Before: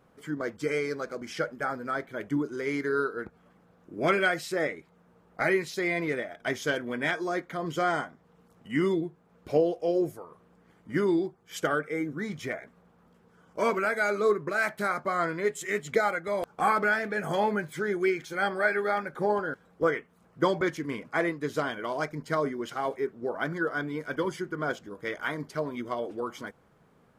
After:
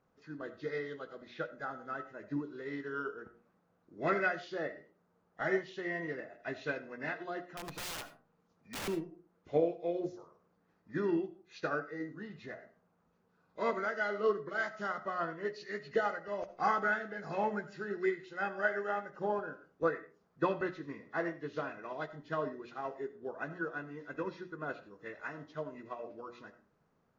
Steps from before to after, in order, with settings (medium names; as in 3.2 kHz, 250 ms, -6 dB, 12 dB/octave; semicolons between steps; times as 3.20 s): knee-point frequency compression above 1.6 kHz 1.5:1; hum notches 60/120/180/240/300/360/420/480/540/600 Hz; 7.57–8.88 s: integer overflow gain 26 dB; reverberation RT60 0.40 s, pre-delay 35 ms, DRR 11 dB; upward expansion 1.5:1, over -35 dBFS; trim -4.5 dB